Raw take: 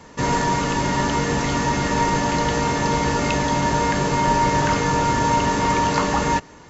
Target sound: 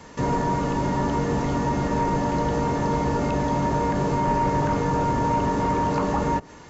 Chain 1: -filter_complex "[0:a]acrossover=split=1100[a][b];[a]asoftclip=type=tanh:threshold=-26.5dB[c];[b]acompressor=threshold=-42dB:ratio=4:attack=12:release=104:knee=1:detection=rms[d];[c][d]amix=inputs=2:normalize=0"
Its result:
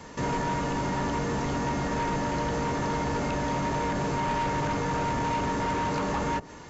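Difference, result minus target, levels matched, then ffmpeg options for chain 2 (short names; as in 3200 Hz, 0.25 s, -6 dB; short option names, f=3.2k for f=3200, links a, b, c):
soft clip: distortion +11 dB
-filter_complex "[0:a]acrossover=split=1100[a][b];[a]asoftclip=type=tanh:threshold=-15dB[c];[b]acompressor=threshold=-42dB:ratio=4:attack=12:release=104:knee=1:detection=rms[d];[c][d]amix=inputs=2:normalize=0"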